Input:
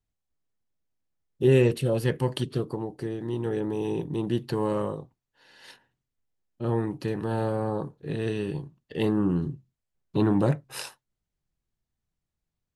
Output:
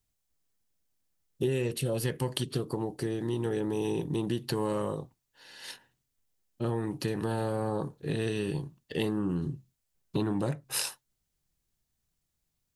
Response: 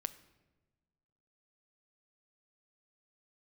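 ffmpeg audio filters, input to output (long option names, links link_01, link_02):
-af "highshelf=frequency=3900:gain=10.5,acompressor=threshold=-28dB:ratio=6,volume=1.5dB"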